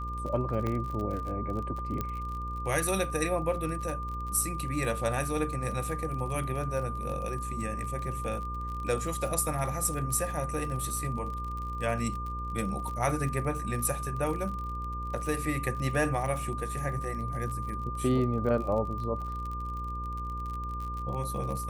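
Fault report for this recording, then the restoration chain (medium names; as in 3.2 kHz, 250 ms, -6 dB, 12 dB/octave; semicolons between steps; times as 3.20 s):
buzz 60 Hz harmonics 9 -37 dBFS
crackle 42 per s -36 dBFS
whine 1.2 kHz -36 dBFS
0.67 s: pop -20 dBFS
2.01 s: pop -18 dBFS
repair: de-click; de-hum 60 Hz, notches 9; band-stop 1.2 kHz, Q 30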